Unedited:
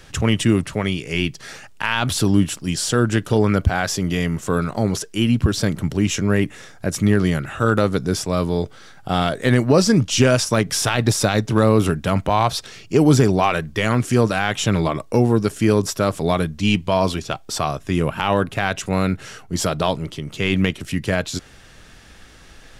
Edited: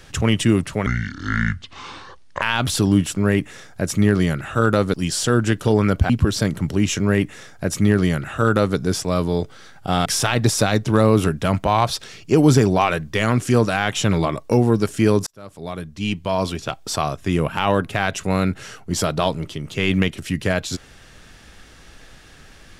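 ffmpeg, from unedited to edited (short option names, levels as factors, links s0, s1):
-filter_complex "[0:a]asplit=8[s0][s1][s2][s3][s4][s5][s6][s7];[s0]atrim=end=0.864[s8];[s1]atrim=start=0.86:end=1.84,asetpts=PTS-STARTPTS,asetrate=27783,aresample=44100[s9];[s2]atrim=start=1.836:end=2.592[s10];[s3]atrim=start=6.208:end=7.982[s11];[s4]atrim=start=2.588:end=3.752[s12];[s5]atrim=start=5.308:end=9.272[s13];[s6]atrim=start=10.678:end=15.89,asetpts=PTS-STARTPTS,afade=t=out:st=5.208:d=0.004:c=hsin[s14];[s7]atrim=start=15.89,asetpts=PTS-STARTPTS,afade=t=in:d=1.58[s15];[s8][s9]acrossfade=d=0.004:c1=hsin:c2=hsin[s16];[s16][s10]acrossfade=d=0.004:c1=hsin:c2=hsin[s17];[s17][s11]acrossfade=d=0.004:c1=hsin:c2=hsin[s18];[s18][s12]acrossfade=d=0.004:c1=hsin:c2=hsin[s19];[s19][s13]acrossfade=d=0.004:c1=hsin:c2=hsin[s20];[s14][s15]concat=n=2:v=0:a=1[s21];[s20][s21]acrossfade=d=0.004:c1=hsin:c2=hsin"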